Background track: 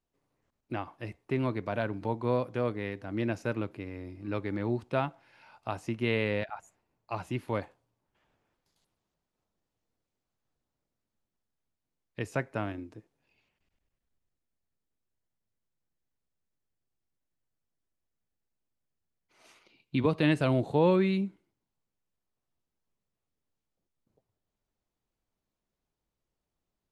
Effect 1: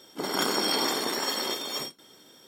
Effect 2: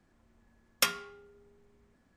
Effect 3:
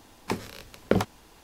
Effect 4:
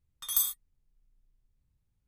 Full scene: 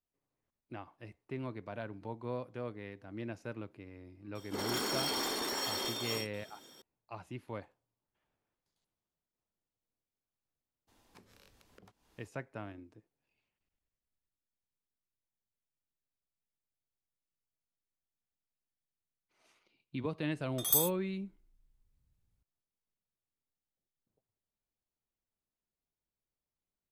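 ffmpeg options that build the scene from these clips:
-filter_complex "[0:a]volume=-10.5dB[a];[1:a]asoftclip=type=tanh:threshold=-27.5dB[b];[3:a]acompressor=threshold=-33dB:ratio=16:attack=0.38:release=174:knee=6:detection=rms[c];[b]atrim=end=2.47,asetpts=PTS-STARTPTS,volume=-3.5dB,afade=t=in:d=0.004:c=hsin,afade=t=out:st=2.466:d=0.004:c=hsin,adelay=4350[d];[c]atrim=end=1.43,asetpts=PTS-STARTPTS,volume=-15dB,afade=t=in:d=0.02,afade=t=out:st=1.41:d=0.02,adelay=10870[e];[4:a]atrim=end=2.07,asetpts=PTS-STARTPTS,volume=-1dB,afade=t=in:d=0.004:c=hsin,afade=t=out:st=2.066:d=0.004:c=hsin,adelay=897876S[f];[a][d][e][f]amix=inputs=4:normalize=0"

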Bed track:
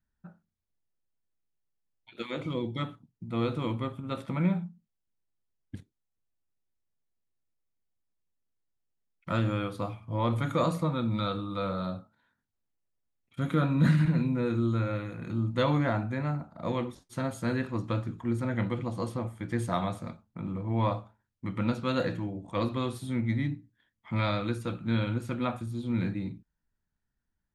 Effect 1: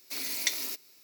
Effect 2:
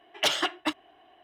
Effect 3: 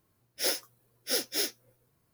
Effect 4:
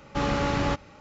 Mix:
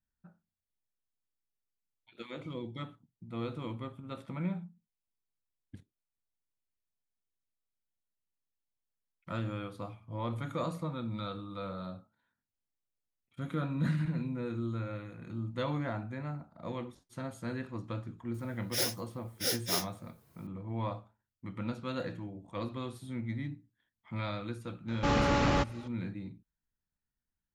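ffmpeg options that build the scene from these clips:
-filter_complex "[0:a]volume=-8dB[a];[3:a]acompressor=mode=upward:threshold=-37dB:ratio=1.5:attack=91:release=420:knee=2.83:detection=peak[b];[4:a]asoftclip=type=tanh:threshold=-17.5dB[c];[b]atrim=end=2.13,asetpts=PTS-STARTPTS,volume=-2.5dB,afade=t=in:d=0.004:c=hsin,afade=t=out:st=2.126:d=0.004:c=hsin,adelay=18340[d];[c]atrim=end=1,asetpts=PTS-STARTPTS,volume=-0.5dB,afade=t=in:d=0.004:c=hsin,afade=t=out:st=0.996:d=0.004:c=hsin,adelay=24880[e];[a][d][e]amix=inputs=3:normalize=0"

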